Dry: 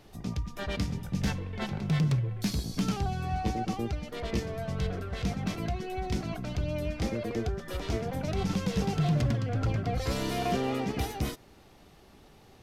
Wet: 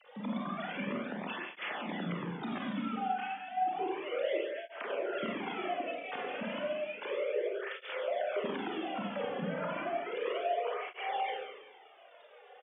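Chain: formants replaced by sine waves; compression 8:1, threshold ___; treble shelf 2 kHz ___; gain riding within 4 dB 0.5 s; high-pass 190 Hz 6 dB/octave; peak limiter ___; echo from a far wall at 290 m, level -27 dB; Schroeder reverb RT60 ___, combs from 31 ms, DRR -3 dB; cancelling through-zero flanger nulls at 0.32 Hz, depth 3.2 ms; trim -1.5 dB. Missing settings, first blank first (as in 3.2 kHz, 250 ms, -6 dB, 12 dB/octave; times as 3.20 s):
-30 dBFS, +3.5 dB, -28.5 dBFS, 1.2 s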